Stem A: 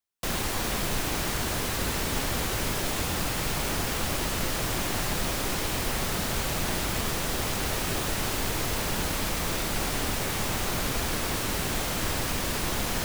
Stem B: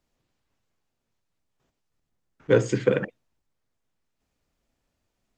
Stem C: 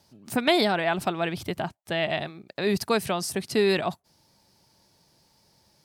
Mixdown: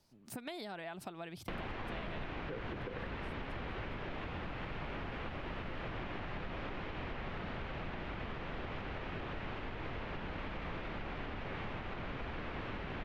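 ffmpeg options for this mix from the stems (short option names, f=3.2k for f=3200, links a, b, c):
-filter_complex "[0:a]adelay=1250,volume=0.5dB[a];[1:a]acompressor=threshold=-23dB:ratio=6,volume=-1dB,asplit=2[b][c];[2:a]acompressor=threshold=-26dB:ratio=2.5,volume=-11dB[d];[c]apad=whole_len=257642[e];[d][e]sidechaincompress=threshold=-52dB:ratio=8:attack=16:release=830[f];[a][b]amix=inputs=2:normalize=0,lowpass=f=2.8k:w=0.5412,lowpass=f=2.8k:w=1.3066,alimiter=limit=-22.5dB:level=0:latency=1:release=237,volume=0dB[g];[f][g]amix=inputs=2:normalize=0,acompressor=threshold=-43dB:ratio=2.5"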